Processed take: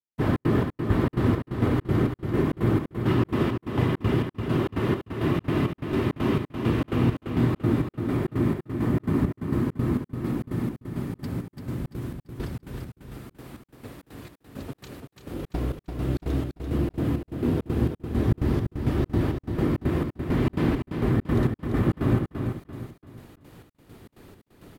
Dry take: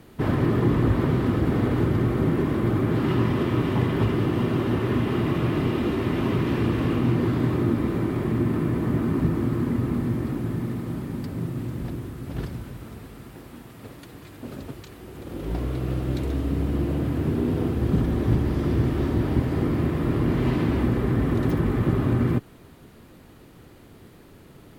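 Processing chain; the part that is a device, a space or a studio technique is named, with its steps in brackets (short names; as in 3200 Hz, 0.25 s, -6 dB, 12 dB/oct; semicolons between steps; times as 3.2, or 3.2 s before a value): trance gate with a delay (step gate "..xx.xx." 167 bpm -60 dB; feedback echo 0.34 s, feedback 36%, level -6.5 dB)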